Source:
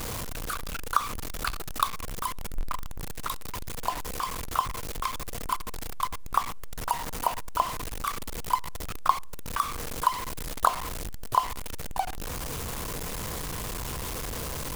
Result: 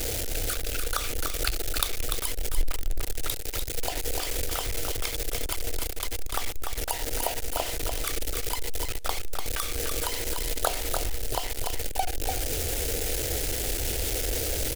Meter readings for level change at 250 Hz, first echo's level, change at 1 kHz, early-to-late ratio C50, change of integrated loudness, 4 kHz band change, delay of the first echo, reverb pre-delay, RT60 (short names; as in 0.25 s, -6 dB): +1.5 dB, -5.0 dB, -8.0 dB, none, +2.0 dB, +6.0 dB, 0.294 s, none, none